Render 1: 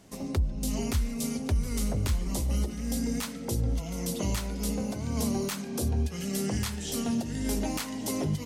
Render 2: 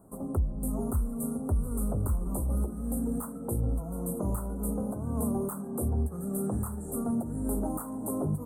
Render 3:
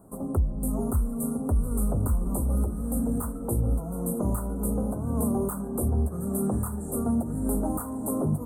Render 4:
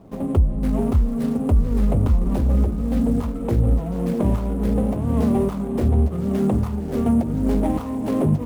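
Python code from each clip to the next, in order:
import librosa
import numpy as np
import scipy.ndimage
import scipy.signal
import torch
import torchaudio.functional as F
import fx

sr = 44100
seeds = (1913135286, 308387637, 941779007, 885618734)

y1 = scipy.signal.sosfilt(scipy.signal.cheby1(4, 1.0, [1300.0, 8600.0], 'bandstop', fs=sr, output='sos'), x)
y2 = y1 + 10.0 ** (-11.0 / 20.0) * np.pad(y1, (int(1147 * sr / 1000.0), 0))[:len(y1)]
y2 = y2 * 10.0 ** (3.5 / 20.0)
y3 = scipy.signal.medfilt(y2, 25)
y3 = y3 * 10.0 ** (7.5 / 20.0)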